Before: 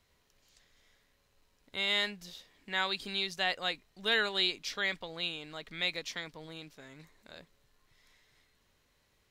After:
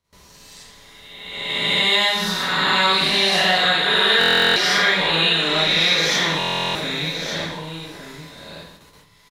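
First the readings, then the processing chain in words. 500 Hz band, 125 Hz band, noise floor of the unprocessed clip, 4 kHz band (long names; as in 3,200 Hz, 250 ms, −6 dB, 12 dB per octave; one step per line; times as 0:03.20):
+16.5 dB, +21.0 dB, −73 dBFS, +17.5 dB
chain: peak hold with a rise ahead of every peak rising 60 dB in 1.50 s
graphic EQ with 15 bands 1,000 Hz +7 dB, 4,000 Hz +4 dB, 10,000 Hz +6 dB
four-comb reverb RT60 0.68 s, DRR −9 dB
in parallel at −3 dB: speech leveller within 4 dB
on the sum: high-pass filter 71 Hz 6 dB per octave
downward compressor 2.5 to 1, threshold −17 dBFS, peak gain reduction 7.5 dB
noise gate with hold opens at −40 dBFS
low-shelf EQ 340 Hz +8.5 dB
on a send: single-tap delay 1,167 ms −9 dB
on the sum: buffer that repeats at 0:04.19/0:06.38, samples 1,024, times 15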